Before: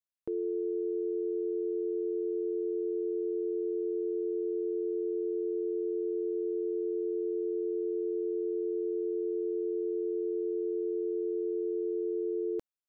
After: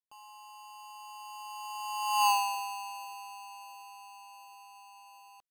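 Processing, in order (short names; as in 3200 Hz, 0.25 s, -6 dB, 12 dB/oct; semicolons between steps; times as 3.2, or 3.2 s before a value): half-waves squared off; Doppler pass-by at 5.3, 9 m/s, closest 1.7 m; speed mistake 33 rpm record played at 78 rpm; gain +6 dB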